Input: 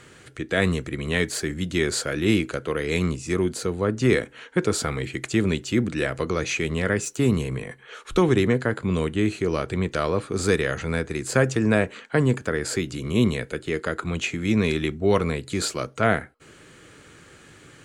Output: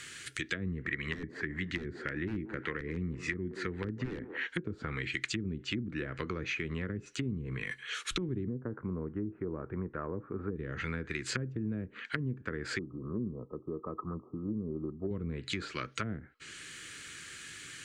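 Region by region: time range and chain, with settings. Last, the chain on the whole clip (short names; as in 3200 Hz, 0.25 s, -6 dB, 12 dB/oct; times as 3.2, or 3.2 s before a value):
0.67–4.47 bell 1900 Hz +12.5 dB 0.39 oct + wrapped overs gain 10.5 dB + band-limited delay 0.179 s, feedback 30%, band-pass 500 Hz, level -11 dB
8.49–10.56 LPF 1100 Hz 24 dB/oct + low shelf 190 Hz -4.5 dB
12.79–15.11 brick-wall FIR low-pass 1300 Hz + low shelf 100 Hz -10 dB + Doppler distortion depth 0.13 ms
whole clip: treble ducked by the level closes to 330 Hz, closed at -18.5 dBFS; EQ curve 340 Hz 0 dB, 680 Hz -9 dB, 1700 Hz +12 dB, 4400 Hz +15 dB; compressor 3:1, threshold -25 dBFS; gain -7.5 dB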